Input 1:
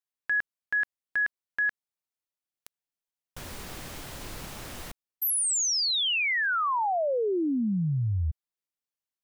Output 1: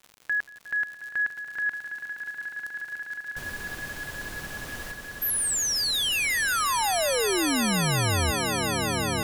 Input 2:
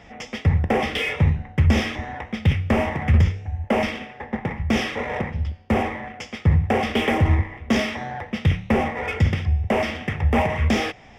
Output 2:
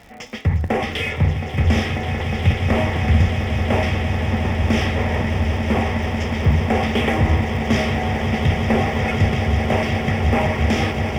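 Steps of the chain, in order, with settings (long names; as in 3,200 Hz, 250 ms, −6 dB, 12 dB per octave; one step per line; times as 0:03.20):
surface crackle 86 per second −36 dBFS
echo that builds up and dies away 180 ms, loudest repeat 8, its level −11 dB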